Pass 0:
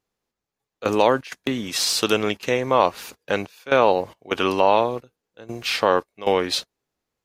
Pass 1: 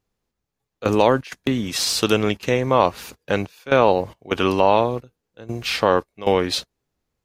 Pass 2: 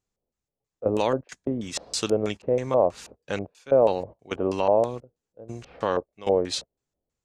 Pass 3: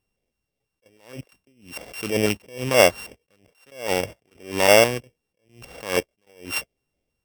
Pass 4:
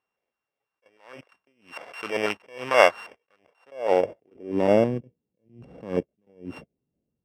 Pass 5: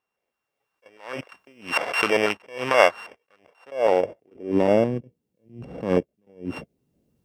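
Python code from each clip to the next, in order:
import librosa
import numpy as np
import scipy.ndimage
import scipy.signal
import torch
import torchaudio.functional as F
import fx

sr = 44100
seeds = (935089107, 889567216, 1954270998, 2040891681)

y1 = fx.low_shelf(x, sr, hz=180.0, db=11.5)
y2 = fx.filter_lfo_lowpass(y1, sr, shape='square', hz=3.1, low_hz=600.0, high_hz=7600.0, q=2.7)
y2 = F.gain(torch.from_numpy(y2), -8.5).numpy()
y3 = np.r_[np.sort(y2[:len(y2) // 16 * 16].reshape(-1, 16), axis=1).ravel(), y2[len(y2) // 16 * 16:]]
y3 = fx.attack_slew(y3, sr, db_per_s=130.0)
y3 = F.gain(torch.from_numpy(y3), 6.5).numpy()
y4 = fx.filter_sweep_bandpass(y3, sr, from_hz=1200.0, to_hz=200.0, start_s=3.37, end_s=4.8, q=1.3)
y4 = F.gain(torch.from_numpy(y4), 5.5).numpy()
y5 = fx.recorder_agc(y4, sr, target_db=-9.5, rise_db_per_s=10.0, max_gain_db=30)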